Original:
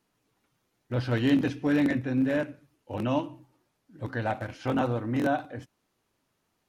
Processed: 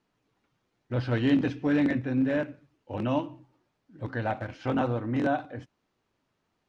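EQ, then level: distance through air 94 m; 0.0 dB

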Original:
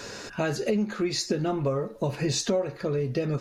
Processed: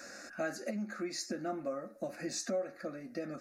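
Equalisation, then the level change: high-pass 260 Hz 6 dB/octave; static phaser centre 640 Hz, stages 8; -5.5 dB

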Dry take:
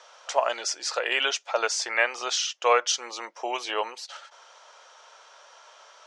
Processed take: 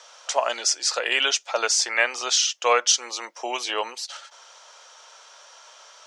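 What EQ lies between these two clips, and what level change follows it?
high-pass 170 Hz; treble shelf 3.7 kHz +10.5 dB; dynamic bell 240 Hz, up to +7 dB, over -51 dBFS, Q 2.4; 0.0 dB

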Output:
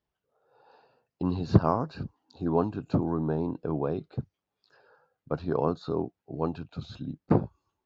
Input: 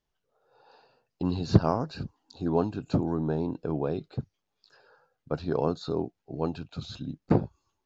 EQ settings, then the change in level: high-pass 48 Hz; low-pass 2.3 kHz 6 dB/octave; dynamic bell 1.1 kHz, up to +5 dB, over -51 dBFS, Q 3.1; 0.0 dB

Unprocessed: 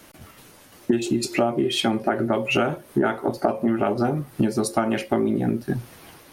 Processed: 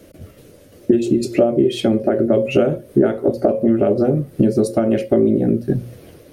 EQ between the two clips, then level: peaking EQ 72 Hz +6.5 dB 1.7 oct; resonant low shelf 690 Hz +8 dB, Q 3; hum notches 60/120/180/240 Hz; -3.5 dB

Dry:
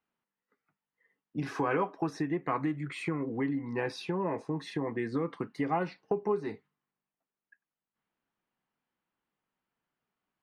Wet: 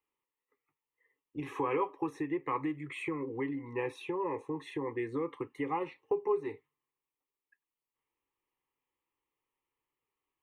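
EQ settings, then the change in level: static phaser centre 1 kHz, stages 8; 0.0 dB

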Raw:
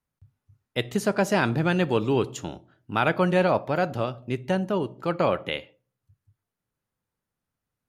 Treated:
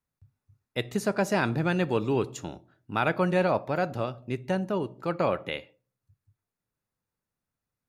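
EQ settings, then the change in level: band-stop 3.1 kHz, Q 9.3; -3.0 dB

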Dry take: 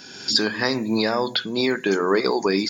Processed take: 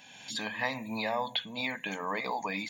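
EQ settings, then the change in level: bass shelf 300 Hz -8.5 dB; static phaser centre 1.4 kHz, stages 6; -3.5 dB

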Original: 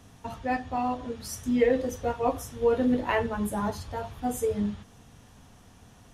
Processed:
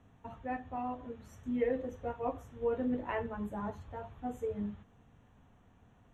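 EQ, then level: boxcar filter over 9 samples; -9.0 dB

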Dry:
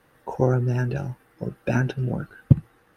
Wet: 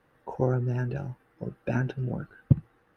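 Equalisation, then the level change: treble shelf 4.3 kHz -10.5 dB; -5.0 dB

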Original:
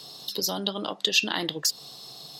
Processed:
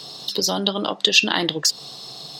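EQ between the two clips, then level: peaking EQ 13 kHz -13 dB 0.59 oct; +7.5 dB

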